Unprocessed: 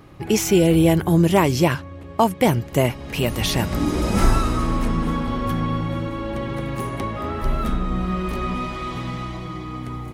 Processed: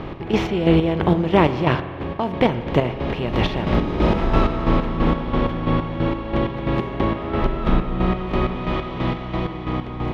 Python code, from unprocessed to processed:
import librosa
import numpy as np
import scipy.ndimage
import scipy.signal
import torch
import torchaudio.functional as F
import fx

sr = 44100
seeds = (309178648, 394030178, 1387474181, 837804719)

y = fx.bin_compress(x, sr, power=0.6)
y = fx.peak_eq(y, sr, hz=3200.0, db=4.5, octaves=1.0)
y = fx.chopper(y, sr, hz=3.0, depth_pct=60, duty_pct=40)
y = fx.air_absorb(y, sr, metres=340.0)
y = fx.rev_spring(y, sr, rt60_s=1.9, pass_ms=(39,), chirp_ms=30, drr_db=11.0)